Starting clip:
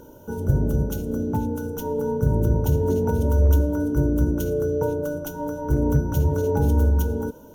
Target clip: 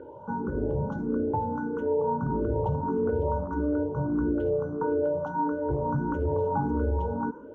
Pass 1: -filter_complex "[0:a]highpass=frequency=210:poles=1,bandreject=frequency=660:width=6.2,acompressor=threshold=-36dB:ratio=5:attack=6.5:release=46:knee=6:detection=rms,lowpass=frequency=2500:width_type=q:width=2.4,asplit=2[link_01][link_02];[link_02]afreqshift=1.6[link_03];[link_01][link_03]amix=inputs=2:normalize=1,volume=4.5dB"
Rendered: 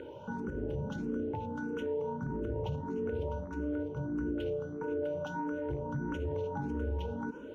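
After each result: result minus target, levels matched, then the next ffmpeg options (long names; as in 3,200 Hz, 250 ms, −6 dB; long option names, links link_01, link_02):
downward compressor: peak gain reduction +7.5 dB; 1,000 Hz band −4.0 dB
-filter_complex "[0:a]highpass=frequency=210:poles=1,bandreject=frequency=660:width=6.2,acompressor=threshold=-26.5dB:ratio=5:attack=6.5:release=46:knee=6:detection=rms,lowpass=frequency=2500:width_type=q:width=2.4,asplit=2[link_01][link_02];[link_02]afreqshift=1.6[link_03];[link_01][link_03]amix=inputs=2:normalize=1,volume=4.5dB"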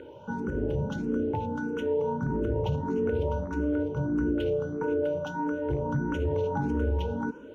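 1,000 Hz band −4.5 dB
-filter_complex "[0:a]highpass=frequency=210:poles=1,bandreject=frequency=660:width=6.2,acompressor=threshold=-26.5dB:ratio=5:attack=6.5:release=46:knee=6:detection=rms,lowpass=frequency=1100:width_type=q:width=2.4,asplit=2[link_01][link_02];[link_02]afreqshift=1.6[link_03];[link_01][link_03]amix=inputs=2:normalize=1,volume=4.5dB"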